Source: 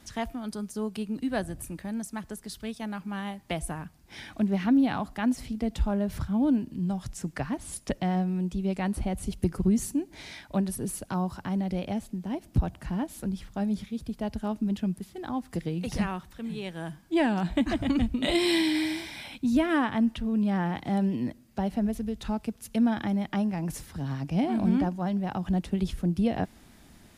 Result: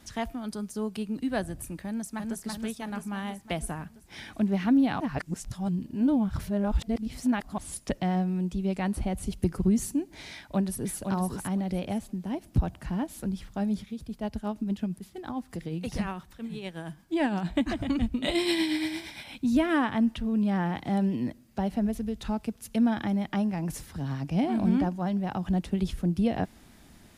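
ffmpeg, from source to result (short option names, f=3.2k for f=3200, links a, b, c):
-filter_complex "[0:a]asplit=2[a][b];[b]afade=t=in:st=1.86:d=0.01,afade=t=out:st=2.39:d=0.01,aecho=0:1:330|660|990|1320|1650|1980|2310|2640|2970:0.749894|0.449937|0.269962|0.161977|0.0971863|0.0583118|0.0349871|0.0209922|0.0125953[c];[a][c]amix=inputs=2:normalize=0,asplit=2[d][e];[e]afade=t=in:st=10.34:d=0.01,afade=t=out:st=10.96:d=0.01,aecho=0:1:510|1020|1530:0.530884|0.106177|0.0212354[f];[d][f]amix=inputs=2:normalize=0,asplit=3[g][h][i];[g]afade=t=out:st=13.77:d=0.02[j];[h]tremolo=f=8.7:d=0.47,afade=t=in:st=13.77:d=0.02,afade=t=out:st=19.31:d=0.02[k];[i]afade=t=in:st=19.31:d=0.02[l];[j][k][l]amix=inputs=3:normalize=0,asplit=3[m][n][o];[m]atrim=end=5.002[p];[n]atrim=start=4.998:end=7.582,asetpts=PTS-STARTPTS,areverse[q];[o]atrim=start=7.578[r];[p][q]acrossfade=d=0.004:c1=hsin:c2=hsin[s];[s][r]acrossfade=d=0.004:c1=hsin:c2=hsin"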